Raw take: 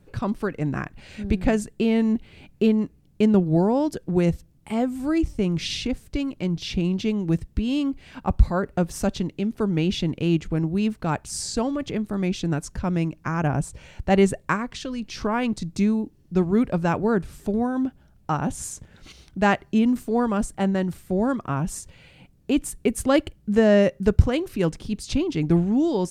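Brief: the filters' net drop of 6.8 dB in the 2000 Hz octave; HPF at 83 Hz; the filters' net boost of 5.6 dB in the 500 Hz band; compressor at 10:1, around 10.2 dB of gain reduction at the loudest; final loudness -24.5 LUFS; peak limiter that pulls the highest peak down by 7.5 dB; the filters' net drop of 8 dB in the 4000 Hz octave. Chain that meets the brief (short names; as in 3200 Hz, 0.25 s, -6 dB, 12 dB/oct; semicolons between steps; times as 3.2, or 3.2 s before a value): HPF 83 Hz; bell 500 Hz +7.5 dB; bell 2000 Hz -8 dB; bell 4000 Hz -8 dB; compressor 10:1, threshold -19 dBFS; gain +3.5 dB; limiter -14 dBFS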